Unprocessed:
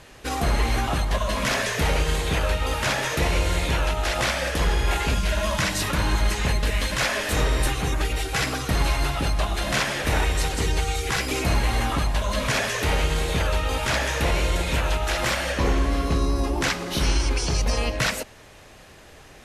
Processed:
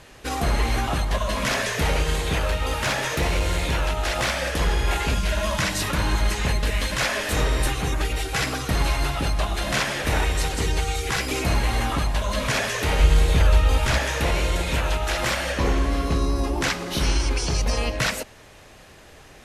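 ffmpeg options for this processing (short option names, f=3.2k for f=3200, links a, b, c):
-filter_complex "[0:a]asettb=1/sr,asplit=3[a][b][c];[a]atrim=end=2.374[d];[b]atrim=start=2.37:end=4.38,asetpts=PTS-STARTPTS,afade=t=in:d=0.004:c=qsin,afade=t=out:st=2.006:d=0.004:c=qsin,volume=17dB,asoftclip=hard,volume=-17dB[e];[c]atrim=start=4.376[f];[d][e]acrossfade=d=0.004:c1=hsin:c2=qsin[g];[g][f]acrossfade=d=0.004:c1=qsin:c2=hsin,asettb=1/sr,asplit=3[h][i][j];[h]atrim=end=12.994[k];[i]atrim=start=12.99:end=13.98,asetpts=PTS-STARTPTS,afade=t=in:d=0.004:c=qsin,afade=t=out:st=0.986:d=0.004:c=qsin,lowshelf=f=88:g=12[l];[j]atrim=start=13.976[m];[k][l]acrossfade=d=0.004:c1=hsin:c2=qsin[n];[n][m]acrossfade=d=0.004:c1=qsin:c2=hsin"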